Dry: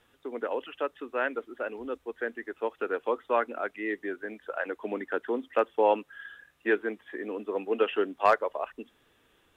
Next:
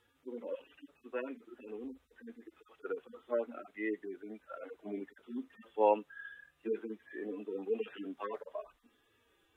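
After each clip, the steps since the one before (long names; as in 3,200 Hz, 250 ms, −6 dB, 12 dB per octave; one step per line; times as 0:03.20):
harmonic-percussive split with one part muted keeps harmonic
level −3 dB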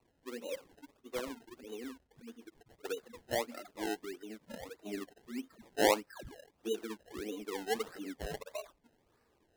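sample-and-hold swept by an LFO 26×, swing 100% 1.6 Hz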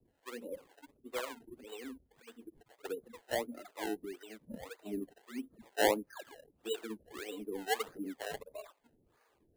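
two-band tremolo in antiphase 2 Hz, depth 100%, crossover 470 Hz
bad sample-rate conversion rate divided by 4×, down filtered, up hold
level +5 dB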